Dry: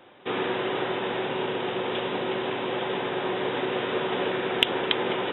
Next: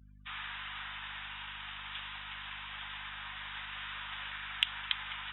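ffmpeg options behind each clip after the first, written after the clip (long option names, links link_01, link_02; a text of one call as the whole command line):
ffmpeg -i in.wav -af "highpass=frequency=1200:width=0.5412,highpass=frequency=1200:width=1.3066,afftdn=noise_reduction=33:noise_floor=-48,aeval=exprs='val(0)+0.00398*(sin(2*PI*50*n/s)+sin(2*PI*2*50*n/s)/2+sin(2*PI*3*50*n/s)/3+sin(2*PI*4*50*n/s)/4+sin(2*PI*5*50*n/s)/5)':channel_layout=same,volume=-7.5dB" out.wav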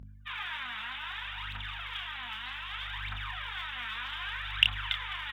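ffmpeg -i in.wav -filter_complex "[0:a]asubboost=boost=5:cutoff=93,aphaser=in_gain=1:out_gain=1:delay=4.7:decay=0.74:speed=0.64:type=triangular,asplit=2[link_01][link_02];[link_02]adelay=29,volume=-6dB[link_03];[link_01][link_03]amix=inputs=2:normalize=0" out.wav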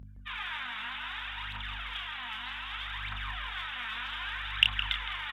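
ffmpeg -i in.wav -filter_complex "[0:a]asplit=2[link_01][link_02];[link_02]adelay=164,lowpass=frequency=1700:poles=1,volume=-5dB,asplit=2[link_03][link_04];[link_04]adelay=164,lowpass=frequency=1700:poles=1,volume=0.48,asplit=2[link_05][link_06];[link_06]adelay=164,lowpass=frequency=1700:poles=1,volume=0.48,asplit=2[link_07][link_08];[link_08]adelay=164,lowpass=frequency=1700:poles=1,volume=0.48,asplit=2[link_09][link_10];[link_10]adelay=164,lowpass=frequency=1700:poles=1,volume=0.48,asplit=2[link_11][link_12];[link_12]adelay=164,lowpass=frequency=1700:poles=1,volume=0.48[link_13];[link_01][link_03][link_05][link_07][link_09][link_11][link_13]amix=inputs=7:normalize=0,aresample=32000,aresample=44100" out.wav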